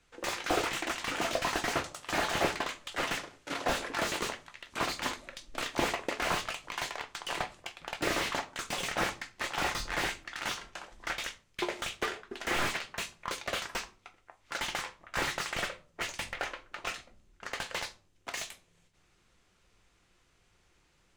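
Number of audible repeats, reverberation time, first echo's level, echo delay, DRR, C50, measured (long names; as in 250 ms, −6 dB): no echo audible, 0.40 s, no echo audible, no echo audible, 9.0 dB, 19.0 dB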